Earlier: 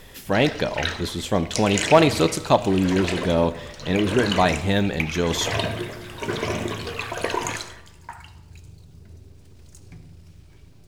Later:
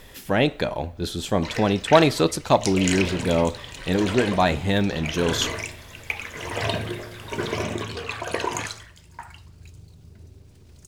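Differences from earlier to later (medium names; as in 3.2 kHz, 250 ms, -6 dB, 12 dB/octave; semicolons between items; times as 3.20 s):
background: entry +1.10 s; reverb: off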